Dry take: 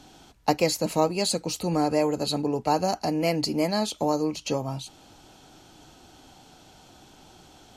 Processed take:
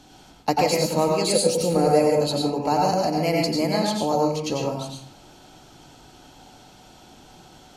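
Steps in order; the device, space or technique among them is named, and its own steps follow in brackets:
bathroom (convolution reverb RT60 0.55 s, pre-delay 87 ms, DRR −1 dB)
0:01.31–0:02.21: thirty-one-band graphic EQ 500 Hz +11 dB, 1,000 Hz −5 dB, 10,000 Hz +11 dB

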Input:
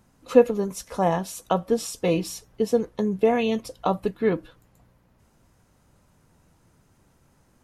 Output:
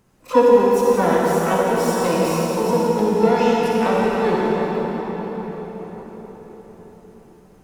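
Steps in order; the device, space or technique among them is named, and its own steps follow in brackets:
shimmer-style reverb (pitch-shifted copies added +12 semitones −7 dB; convolution reverb RT60 5.5 s, pre-delay 39 ms, DRR −5 dB)
level −1 dB

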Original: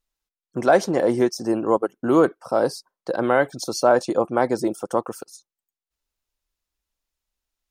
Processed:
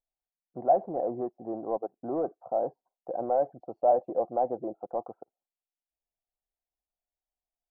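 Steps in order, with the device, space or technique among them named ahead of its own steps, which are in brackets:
overdriven synthesiser ladder filter (soft clipping −12 dBFS, distortion −14 dB; transistor ladder low-pass 780 Hz, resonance 75%)
0:03.20–0:04.79: dynamic equaliser 530 Hz, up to +5 dB, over −39 dBFS, Q 4.3
level −2.5 dB

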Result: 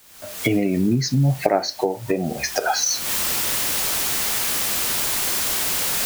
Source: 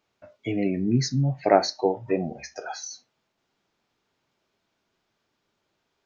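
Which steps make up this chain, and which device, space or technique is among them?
cheap recorder with automatic gain (white noise bed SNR 22 dB; camcorder AGC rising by 51 dB per second)
level −2 dB

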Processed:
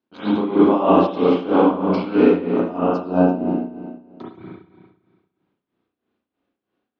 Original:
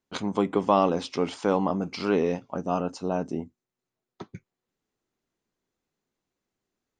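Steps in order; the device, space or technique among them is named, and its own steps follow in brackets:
combo amplifier with spring reverb and tremolo (spring reverb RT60 1.6 s, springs 33/57 ms, chirp 80 ms, DRR −10 dB; amplitude tremolo 3.1 Hz, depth 75%; loudspeaker in its box 96–4,400 Hz, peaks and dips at 140 Hz −5 dB, 290 Hz +9 dB, 2,000 Hz −5 dB)

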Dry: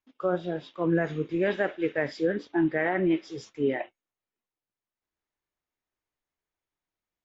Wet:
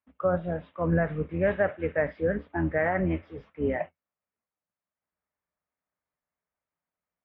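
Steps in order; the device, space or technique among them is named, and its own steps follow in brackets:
sub-octave bass pedal (sub-octave generator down 2 octaves, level −4 dB; loudspeaker in its box 69–2,300 Hz, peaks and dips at 120 Hz −7 dB, 170 Hz +6 dB, 350 Hz −9 dB, 600 Hz +5 dB, 1,200 Hz +3 dB)

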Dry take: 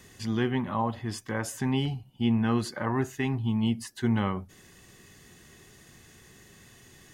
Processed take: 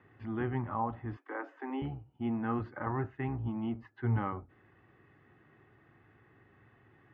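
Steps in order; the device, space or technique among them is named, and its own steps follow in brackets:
sub-octave bass pedal (sub-octave generator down 1 octave, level −4 dB; loudspeaker in its box 74–2,200 Hz, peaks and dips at 76 Hz −7 dB, 110 Hz +6 dB, 190 Hz −6 dB, 310 Hz +5 dB, 810 Hz +6 dB, 1,300 Hz +7 dB)
0:01.17–0:01.82: Butterworth high-pass 260 Hz 96 dB per octave
level −8.5 dB

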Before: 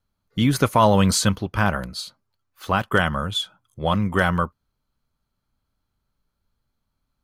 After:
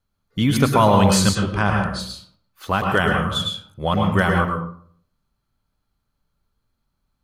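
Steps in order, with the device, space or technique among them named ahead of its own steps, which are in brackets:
bathroom (convolution reverb RT60 0.55 s, pre-delay 99 ms, DRR 1.5 dB)
0:01.35–0:02.00: Butterworth low-pass 10,000 Hz 72 dB per octave

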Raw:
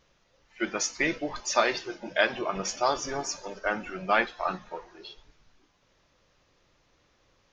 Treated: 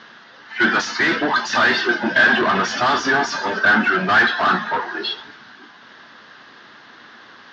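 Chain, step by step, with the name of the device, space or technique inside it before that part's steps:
overdrive pedal into a guitar cabinet (mid-hump overdrive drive 35 dB, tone 7,000 Hz, clips at −7 dBFS; loudspeaker in its box 110–4,300 Hz, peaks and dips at 230 Hz +10 dB, 540 Hz −10 dB, 1,600 Hz +9 dB, 2,400 Hz −9 dB)
level −2.5 dB

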